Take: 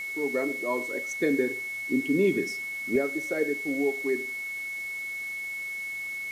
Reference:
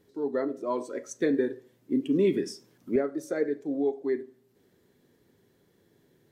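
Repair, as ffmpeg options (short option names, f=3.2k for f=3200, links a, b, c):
-af "bandreject=f=2.2k:w=30,afwtdn=0.0035"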